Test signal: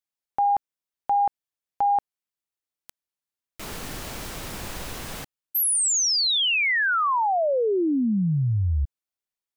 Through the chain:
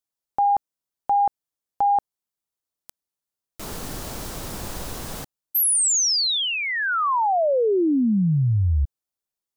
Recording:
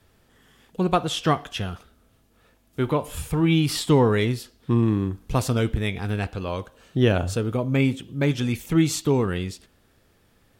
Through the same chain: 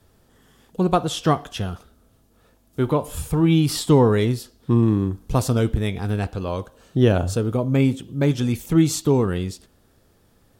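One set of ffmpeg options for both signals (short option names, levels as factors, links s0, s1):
-af "equalizer=f=2300:w=1:g=-7,volume=1.41"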